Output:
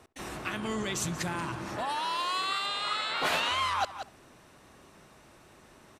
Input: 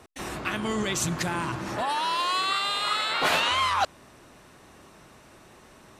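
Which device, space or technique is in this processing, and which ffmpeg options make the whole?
ducked delay: -filter_complex "[0:a]asplit=3[a][b][c];[b]adelay=181,volume=-6dB[d];[c]apad=whole_len=272260[e];[d][e]sidechaincompress=threshold=-36dB:ratio=8:attack=40:release=227[f];[a][f]amix=inputs=2:normalize=0,asettb=1/sr,asplit=3[g][h][i];[g]atrim=end=2.664[j];[h]atrim=start=2.66:end=3.17,asetpts=PTS-STARTPTS,afade=t=in:d=0.004:c=qsin,afade=t=out:st=0.506:d=0.004:c=qsin,lowpass=8.1k[k];[i]atrim=start=3.166[l];[j][k]acrossfade=d=0.004:c1=hsin:c2=qsin[m];[m][l]acrossfade=d=0.004:c1=qsin:c2=hsin,asplit=2[n][o];[o]adelay=68,lowpass=f=2.2k:p=1,volume=-19dB,asplit=2[p][q];[q]adelay=68,lowpass=f=2.2k:p=1,volume=0.29[r];[n][p][r]amix=inputs=3:normalize=0,volume=-5dB"

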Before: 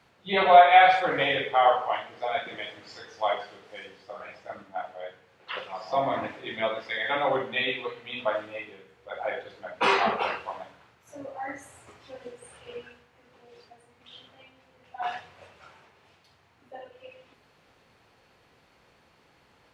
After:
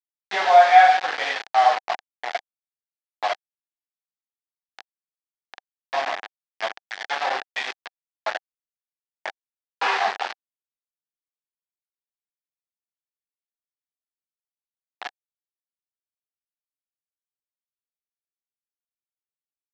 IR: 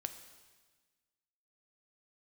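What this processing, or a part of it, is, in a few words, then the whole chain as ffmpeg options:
hand-held game console: -af "acrusher=bits=3:mix=0:aa=0.000001,highpass=500,equalizer=f=530:t=q:w=4:g=-4,equalizer=f=770:t=q:w=4:g=9,equalizer=f=1.7k:t=q:w=4:g=7,lowpass=f=5k:w=0.5412,lowpass=f=5k:w=1.3066,volume=-2.5dB"

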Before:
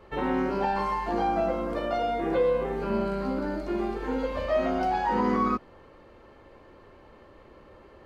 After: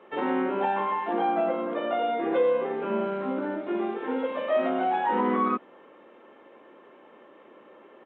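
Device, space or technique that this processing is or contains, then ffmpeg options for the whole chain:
Bluetooth headset: -af "highpass=f=220:w=0.5412,highpass=f=220:w=1.3066,aresample=8000,aresample=44100,volume=1dB" -ar 16000 -c:a sbc -b:a 64k

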